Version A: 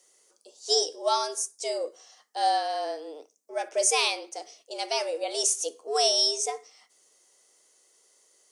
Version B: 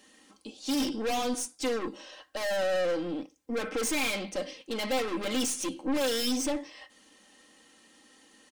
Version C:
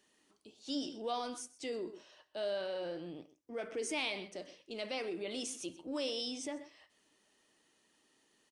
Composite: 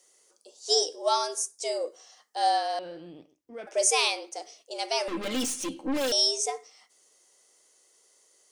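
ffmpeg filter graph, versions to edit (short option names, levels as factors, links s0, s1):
-filter_complex "[0:a]asplit=3[s0][s1][s2];[s0]atrim=end=2.792[s3];[2:a]atrim=start=2.788:end=3.672[s4];[s1]atrim=start=3.668:end=5.082[s5];[1:a]atrim=start=5.078:end=6.122[s6];[s2]atrim=start=6.118[s7];[s3][s4]acrossfade=d=0.004:c1=hsin:c2=hsin[s8];[s8][s5]acrossfade=d=0.004:c1=hsin:c2=hsin[s9];[s9][s6]acrossfade=d=0.004:c1=hsin:c2=hsin[s10];[s10][s7]acrossfade=d=0.004:c1=hsin:c2=hsin"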